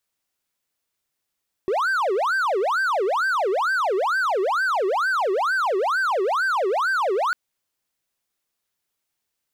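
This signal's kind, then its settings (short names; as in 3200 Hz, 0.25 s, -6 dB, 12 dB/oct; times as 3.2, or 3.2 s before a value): siren wail 371–1570 Hz 2.2/s triangle -17 dBFS 5.65 s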